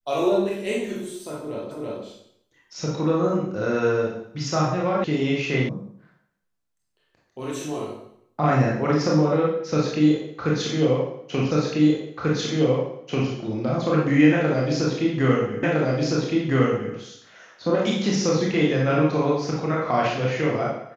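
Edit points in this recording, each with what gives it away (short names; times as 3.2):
1.71 repeat of the last 0.33 s
5.04 sound cut off
5.69 sound cut off
11.51 repeat of the last 1.79 s
15.63 repeat of the last 1.31 s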